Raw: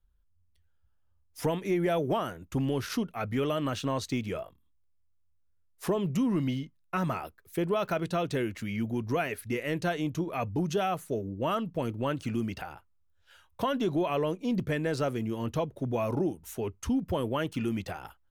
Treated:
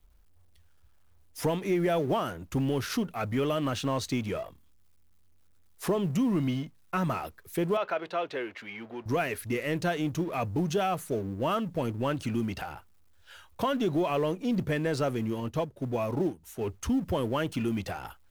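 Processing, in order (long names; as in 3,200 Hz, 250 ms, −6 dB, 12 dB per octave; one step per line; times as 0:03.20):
mu-law and A-law mismatch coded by mu
0:07.77–0:09.06: three-way crossover with the lows and the highs turned down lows −23 dB, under 370 Hz, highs −21 dB, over 4,100 Hz
0:15.40–0:16.61: expander for the loud parts 1.5 to 1, over −48 dBFS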